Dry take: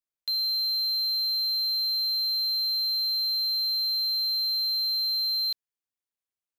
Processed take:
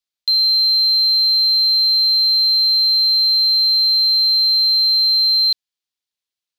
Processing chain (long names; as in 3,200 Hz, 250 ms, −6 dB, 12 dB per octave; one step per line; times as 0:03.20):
parametric band 4,000 Hz +12.5 dB 1.5 octaves